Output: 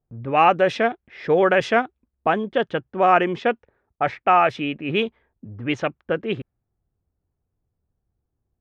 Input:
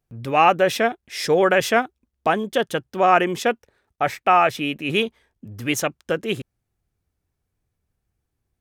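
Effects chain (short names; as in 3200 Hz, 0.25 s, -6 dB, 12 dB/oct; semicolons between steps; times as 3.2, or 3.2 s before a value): low-pass opened by the level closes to 1000 Hz, open at -13 dBFS; Bessel low-pass 3100 Hz, order 2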